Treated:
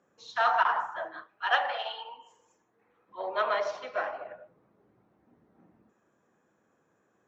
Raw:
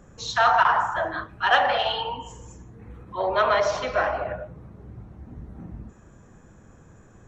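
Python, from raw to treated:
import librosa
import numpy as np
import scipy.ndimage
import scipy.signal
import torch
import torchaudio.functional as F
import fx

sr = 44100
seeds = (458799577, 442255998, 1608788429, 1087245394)

y = fx.bandpass_edges(x, sr, low_hz=fx.steps((0.0, 310.0), (1.22, 540.0), (3.09, 310.0)), high_hz=5300.0)
y = fx.upward_expand(y, sr, threshold_db=-33.0, expansion=1.5)
y = y * librosa.db_to_amplitude(-5.0)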